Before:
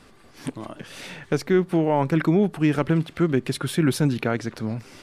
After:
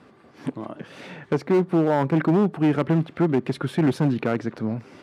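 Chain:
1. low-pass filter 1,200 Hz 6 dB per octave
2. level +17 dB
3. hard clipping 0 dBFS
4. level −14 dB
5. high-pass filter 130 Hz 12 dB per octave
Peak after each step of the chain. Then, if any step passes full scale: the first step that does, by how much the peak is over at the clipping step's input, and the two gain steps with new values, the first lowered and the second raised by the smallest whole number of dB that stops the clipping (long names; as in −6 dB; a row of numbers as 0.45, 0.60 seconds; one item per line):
−10.0, +7.0, 0.0, −14.0, −8.5 dBFS
step 2, 7.0 dB
step 2 +10 dB, step 4 −7 dB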